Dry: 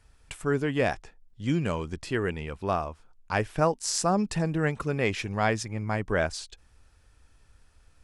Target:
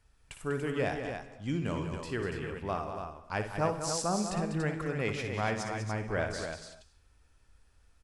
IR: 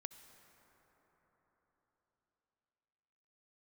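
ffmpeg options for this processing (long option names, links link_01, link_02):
-filter_complex "[0:a]aecho=1:1:58.31|195.3|285.7:0.355|0.355|0.447[link_01];[1:a]atrim=start_sample=2205,afade=type=out:start_time=0.32:duration=0.01,atrim=end_sample=14553[link_02];[link_01][link_02]afir=irnorm=-1:irlink=0,volume=-2dB"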